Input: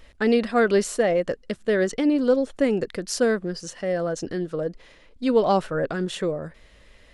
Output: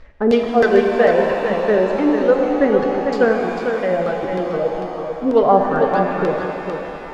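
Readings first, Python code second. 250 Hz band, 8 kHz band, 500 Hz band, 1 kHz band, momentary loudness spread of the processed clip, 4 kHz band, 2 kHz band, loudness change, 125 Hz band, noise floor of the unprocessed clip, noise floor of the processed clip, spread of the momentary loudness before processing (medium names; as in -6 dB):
+4.5 dB, under -10 dB, +7.5 dB, +10.5 dB, 9 LU, 0.0 dB, +6.5 dB, +6.5 dB, +3.5 dB, -53 dBFS, -31 dBFS, 9 LU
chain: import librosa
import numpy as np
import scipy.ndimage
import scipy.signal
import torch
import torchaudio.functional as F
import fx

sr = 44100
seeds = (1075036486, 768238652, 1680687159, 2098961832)

y = scipy.signal.medfilt(x, 15)
y = fx.dereverb_blind(y, sr, rt60_s=1.8)
y = fx.peak_eq(y, sr, hz=250.0, db=-4.5, octaves=2.2)
y = fx.filter_lfo_lowpass(y, sr, shape='saw_down', hz=3.2, low_hz=430.0, high_hz=4700.0, q=1.2)
y = y + 10.0 ** (-6.5 / 20.0) * np.pad(y, (int(448 * sr / 1000.0), 0))[:len(y)]
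y = fx.rev_shimmer(y, sr, seeds[0], rt60_s=3.3, semitones=7, shimmer_db=-8, drr_db=3.0)
y = y * 10.0 ** (7.5 / 20.0)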